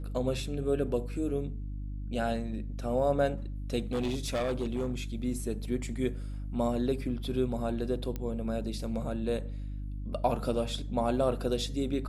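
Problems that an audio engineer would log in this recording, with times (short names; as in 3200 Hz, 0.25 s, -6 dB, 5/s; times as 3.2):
hum 50 Hz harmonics 6 -37 dBFS
3.91–4.95 clipped -26.5 dBFS
8.16 pop -22 dBFS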